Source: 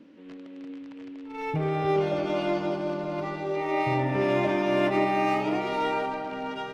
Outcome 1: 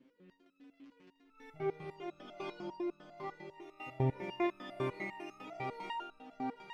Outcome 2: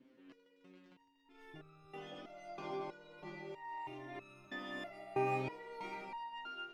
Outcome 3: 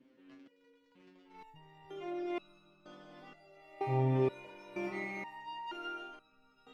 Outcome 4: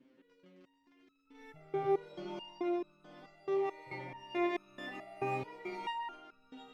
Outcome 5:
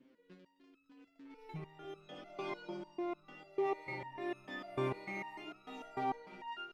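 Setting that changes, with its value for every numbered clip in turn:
resonator arpeggio, rate: 10 Hz, 3.1 Hz, 2.1 Hz, 4.6 Hz, 6.7 Hz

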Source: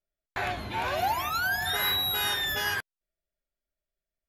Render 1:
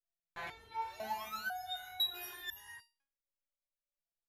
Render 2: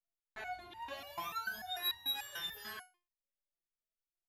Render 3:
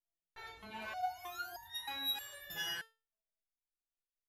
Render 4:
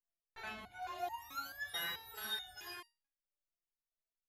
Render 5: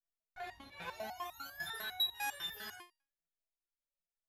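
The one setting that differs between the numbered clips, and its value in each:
resonator arpeggio, rate: 2 Hz, 6.8 Hz, 3.2 Hz, 4.6 Hz, 10 Hz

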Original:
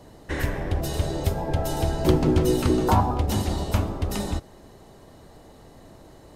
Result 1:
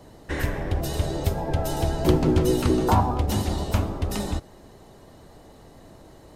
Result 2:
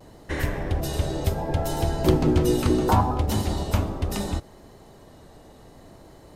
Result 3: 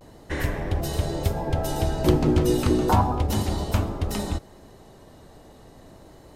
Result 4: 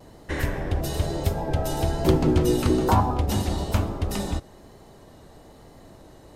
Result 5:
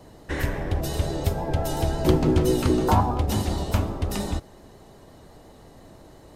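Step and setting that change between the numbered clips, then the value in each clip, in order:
vibrato, rate: 8.9 Hz, 0.7 Hz, 0.33 Hz, 1.1 Hz, 5.7 Hz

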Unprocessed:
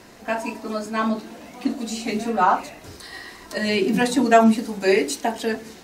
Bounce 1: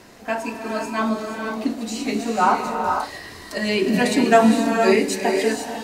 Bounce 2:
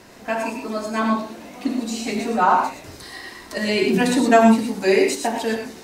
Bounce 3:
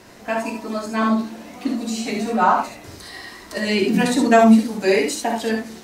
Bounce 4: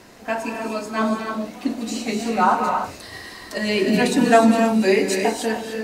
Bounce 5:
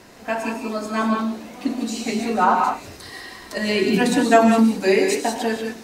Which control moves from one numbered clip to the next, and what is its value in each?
gated-style reverb, gate: 520 ms, 140 ms, 90 ms, 330 ms, 210 ms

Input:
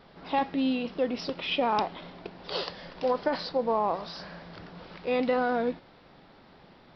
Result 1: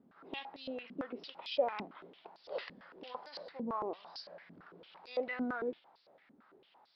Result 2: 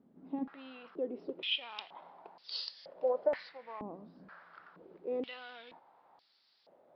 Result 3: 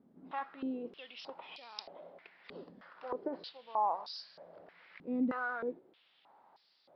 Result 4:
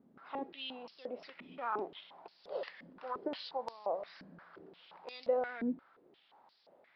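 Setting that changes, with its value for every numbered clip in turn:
step-sequenced band-pass, rate: 8.9 Hz, 2.1 Hz, 3.2 Hz, 5.7 Hz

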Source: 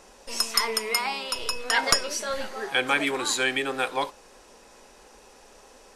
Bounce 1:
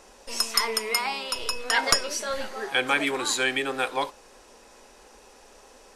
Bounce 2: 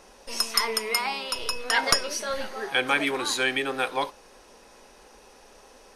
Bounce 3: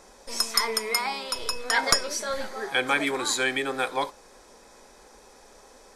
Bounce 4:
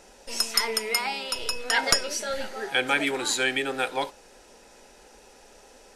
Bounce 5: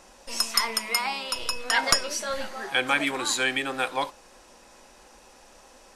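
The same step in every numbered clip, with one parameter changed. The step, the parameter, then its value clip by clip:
band-stop, frequency: 170 Hz, 7.5 kHz, 2.8 kHz, 1.1 kHz, 430 Hz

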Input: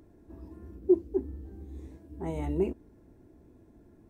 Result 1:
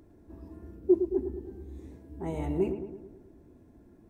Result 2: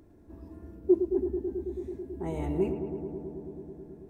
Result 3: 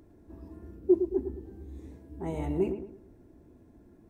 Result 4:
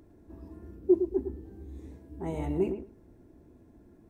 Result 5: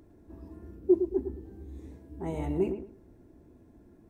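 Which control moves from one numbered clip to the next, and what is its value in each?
filtered feedback delay, feedback: 57%, 88%, 37%, 16%, 25%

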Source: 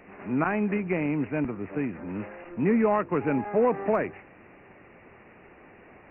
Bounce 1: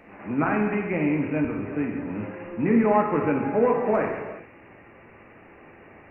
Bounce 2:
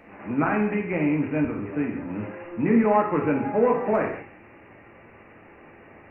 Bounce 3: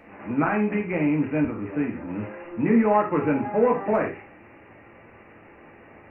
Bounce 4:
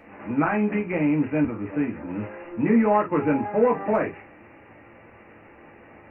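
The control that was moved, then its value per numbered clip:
gated-style reverb, gate: 440 ms, 240 ms, 140 ms, 80 ms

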